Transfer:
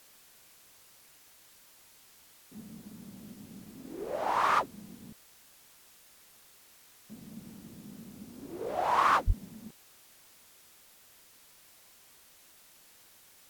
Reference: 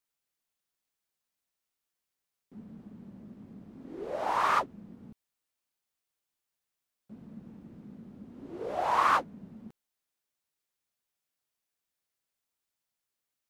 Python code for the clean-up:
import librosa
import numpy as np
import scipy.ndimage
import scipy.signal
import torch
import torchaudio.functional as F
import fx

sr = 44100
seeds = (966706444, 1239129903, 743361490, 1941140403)

y = fx.fix_declip(x, sr, threshold_db=-17.0)
y = fx.highpass(y, sr, hz=140.0, slope=24, at=(9.26, 9.38), fade=0.02)
y = fx.noise_reduce(y, sr, print_start_s=5.3, print_end_s=5.8, reduce_db=28.0)